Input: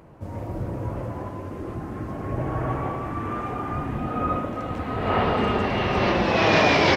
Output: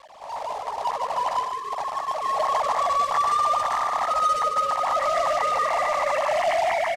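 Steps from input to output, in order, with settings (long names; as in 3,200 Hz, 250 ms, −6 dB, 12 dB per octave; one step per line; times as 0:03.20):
three sine waves on the formant tracks
Butterworth high-pass 480 Hz 96 dB per octave
tilt shelving filter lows +7.5 dB
comb filter 1 ms, depth 92%
brickwall limiter −24.5 dBFS, peak gain reduction 20.5 dB
automatic gain control gain up to 3.5 dB
log-companded quantiser 4 bits
high-frequency loss of the air 71 metres
single-tap delay 148 ms −6.5 dB
level +4 dB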